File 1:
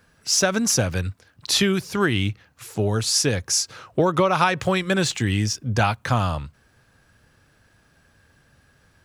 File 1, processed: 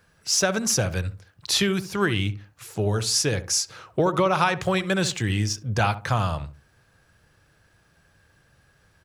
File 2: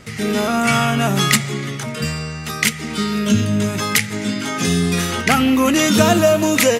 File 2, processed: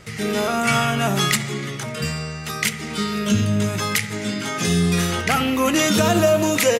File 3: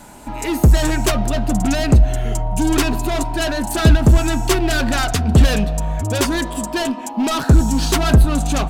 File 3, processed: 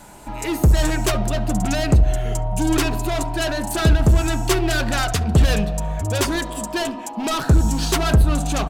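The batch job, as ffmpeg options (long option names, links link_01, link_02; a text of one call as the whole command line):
ffmpeg -i in.wav -filter_complex "[0:a]equalizer=frequency=250:width_type=o:width=0.22:gain=-9.5,asplit=2[link_01][link_02];[link_02]adelay=69,lowpass=frequency=850:poles=1,volume=-11dB,asplit=2[link_03][link_04];[link_04]adelay=69,lowpass=frequency=850:poles=1,volume=0.31,asplit=2[link_05][link_06];[link_06]adelay=69,lowpass=frequency=850:poles=1,volume=0.31[link_07];[link_01][link_03][link_05][link_07]amix=inputs=4:normalize=0,alimiter=level_in=4dB:limit=-1dB:release=50:level=0:latency=1,volume=-6dB" out.wav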